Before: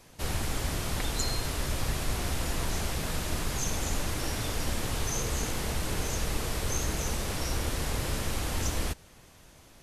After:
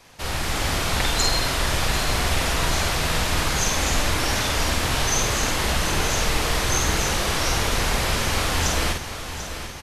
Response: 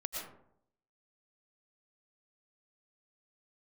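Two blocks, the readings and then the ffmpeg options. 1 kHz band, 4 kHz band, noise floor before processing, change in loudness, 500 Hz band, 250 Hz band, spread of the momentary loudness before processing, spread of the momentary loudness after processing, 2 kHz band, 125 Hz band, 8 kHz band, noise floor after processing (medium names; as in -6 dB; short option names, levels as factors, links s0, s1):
+12.5 dB, +12.5 dB, -55 dBFS, +9.5 dB, +9.0 dB, +7.0 dB, 2 LU, 4 LU, +13.0 dB, +6.5 dB, +9.5 dB, -33 dBFS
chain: -filter_complex "[0:a]asplit=2[s0][s1];[s1]adelay=49,volume=0.631[s2];[s0][s2]amix=inputs=2:normalize=0,acrossover=split=620|5900[s3][s4][s5];[s4]acontrast=81[s6];[s3][s6][s5]amix=inputs=3:normalize=0,aecho=1:1:741|1482|2223|2964|3705|4446:0.282|0.161|0.0916|0.0522|0.0298|0.017,dynaudnorm=f=320:g=3:m=1.68"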